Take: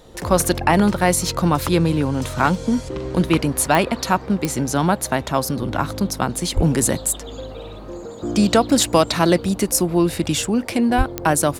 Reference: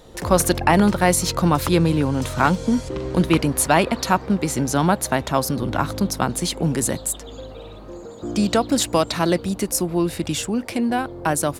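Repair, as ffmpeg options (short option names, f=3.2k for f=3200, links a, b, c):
-filter_complex "[0:a]adeclick=t=4,asplit=3[a][b][c];[a]afade=t=out:st=6.55:d=0.02[d];[b]highpass=f=140:w=0.5412,highpass=f=140:w=1.3066,afade=t=in:st=6.55:d=0.02,afade=t=out:st=6.67:d=0.02[e];[c]afade=t=in:st=6.67:d=0.02[f];[d][e][f]amix=inputs=3:normalize=0,asplit=3[g][h][i];[g]afade=t=out:st=10.97:d=0.02[j];[h]highpass=f=140:w=0.5412,highpass=f=140:w=1.3066,afade=t=in:st=10.97:d=0.02,afade=t=out:st=11.09:d=0.02[k];[i]afade=t=in:st=11.09:d=0.02[l];[j][k][l]amix=inputs=3:normalize=0,asetnsamples=n=441:p=0,asendcmd='6.54 volume volume -3.5dB',volume=0dB"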